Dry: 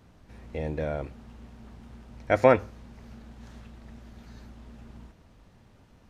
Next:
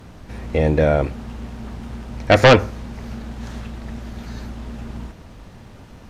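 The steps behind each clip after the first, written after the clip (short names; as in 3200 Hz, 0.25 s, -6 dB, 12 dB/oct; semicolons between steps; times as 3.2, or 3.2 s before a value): sine folder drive 11 dB, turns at -4.5 dBFS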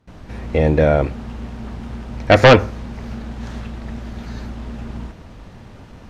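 high shelf 8200 Hz -9.5 dB; gate with hold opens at -33 dBFS; gain +2 dB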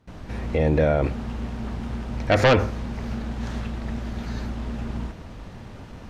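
limiter -11 dBFS, peak gain reduction 8.5 dB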